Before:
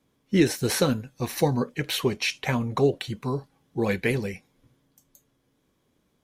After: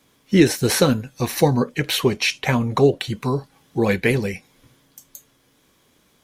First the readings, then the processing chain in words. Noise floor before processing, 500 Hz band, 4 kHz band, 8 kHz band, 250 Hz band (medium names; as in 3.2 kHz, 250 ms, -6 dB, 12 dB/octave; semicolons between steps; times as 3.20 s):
-71 dBFS, +6.0 dB, +6.0 dB, +6.0 dB, +6.0 dB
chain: tape noise reduction on one side only encoder only; trim +6 dB